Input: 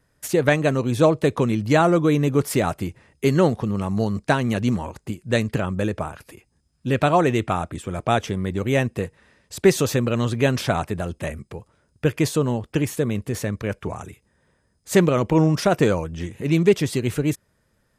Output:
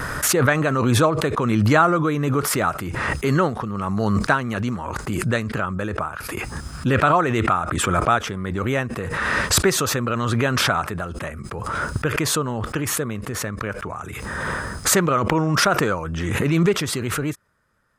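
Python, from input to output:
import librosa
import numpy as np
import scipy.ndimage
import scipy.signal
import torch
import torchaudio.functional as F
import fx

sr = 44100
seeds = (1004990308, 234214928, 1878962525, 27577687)

y = fx.peak_eq(x, sr, hz=1300.0, db=13.5, octaves=0.83)
y = fx.pre_swell(y, sr, db_per_s=21.0)
y = y * librosa.db_to_amplitude(-5.0)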